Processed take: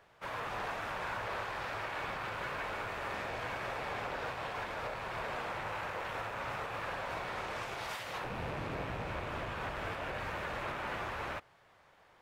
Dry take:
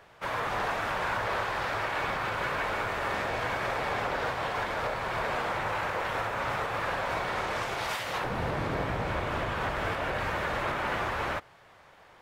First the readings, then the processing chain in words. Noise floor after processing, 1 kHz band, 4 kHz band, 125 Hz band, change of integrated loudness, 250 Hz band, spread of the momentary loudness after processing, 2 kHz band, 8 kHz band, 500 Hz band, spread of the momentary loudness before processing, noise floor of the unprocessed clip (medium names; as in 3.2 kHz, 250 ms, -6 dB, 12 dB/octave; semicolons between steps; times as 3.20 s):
-64 dBFS, -8.0 dB, -7.5 dB, -8.0 dB, -8.0 dB, -8.0 dB, 1 LU, -8.0 dB, -8.0 dB, -8.0 dB, 1 LU, -56 dBFS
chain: rattle on loud lows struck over -44 dBFS, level -31 dBFS; trim -8 dB